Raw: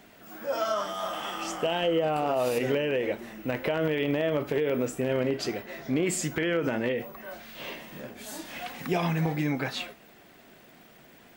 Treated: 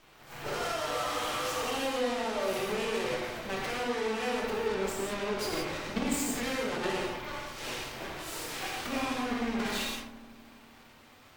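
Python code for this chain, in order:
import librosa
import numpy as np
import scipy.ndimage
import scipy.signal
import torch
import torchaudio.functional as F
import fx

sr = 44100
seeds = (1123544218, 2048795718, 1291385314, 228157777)

p1 = scipy.signal.sosfilt(scipy.signal.butter(2, 120.0, 'highpass', fs=sr, output='sos'), x)
p2 = fx.pitch_keep_formants(p1, sr, semitones=7.5)
p3 = fx.high_shelf(p2, sr, hz=5700.0, db=-4.5)
p4 = fx.over_compress(p3, sr, threshold_db=-35.0, ratio=-1.0)
p5 = p3 + (p4 * 10.0 ** (0.5 / 20.0))
p6 = 10.0 ** (-28.0 / 20.0) * np.tanh(p5 / 10.0 ** (-28.0 / 20.0))
p7 = fx.hum_notches(p6, sr, base_hz=50, count=7)
p8 = fx.cheby_harmonics(p7, sr, harmonics=(3, 4, 8), levels_db=(-9, -19, -32), full_scale_db=-23.5)
p9 = fx.echo_filtered(p8, sr, ms=82, feedback_pct=83, hz=1600.0, wet_db=-12.5)
p10 = fx.rev_gated(p9, sr, seeds[0], gate_ms=200, shape='flat', drr_db=-2.5)
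y = p10 * 10.0 ** (2.0 / 20.0)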